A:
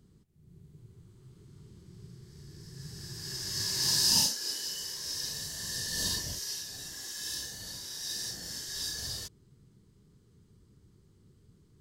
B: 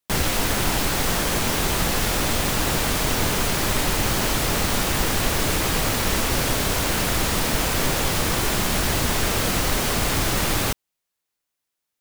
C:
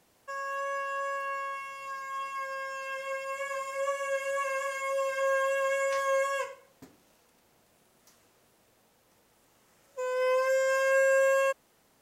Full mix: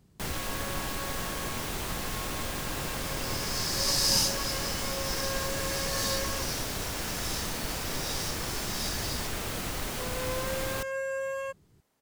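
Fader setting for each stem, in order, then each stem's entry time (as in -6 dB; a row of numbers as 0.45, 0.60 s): -0.5, -12.0, -9.0 dB; 0.00, 0.10, 0.00 s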